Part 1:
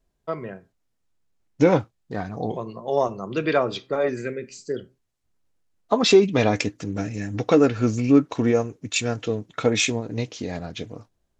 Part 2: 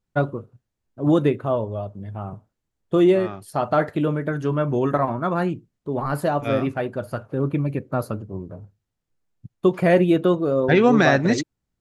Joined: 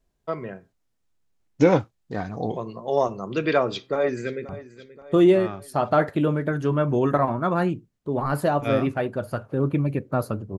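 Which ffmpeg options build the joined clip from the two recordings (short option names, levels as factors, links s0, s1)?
-filter_complex "[0:a]apad=whole_dur=10.58,atrim=end=10.58,atrim=end=4.492[s0];[1:a]atrim=start=2.288:end=8.38[s1];[s0][s1]acrossfade=d=0.004:c1=hsin:c2=hsin,asplit=2[s2][s3];[s3]afade=t=in:st=3.7:d=0.01,afade=t=out:st=4.49:d=0.01,aecho=0:1:530|1060|1590|2120|2650:0.149624|0.082293|0.0452611|0.0248936|0.0136915[s4];[s2][s4]amix=inputs=2:normalize=0"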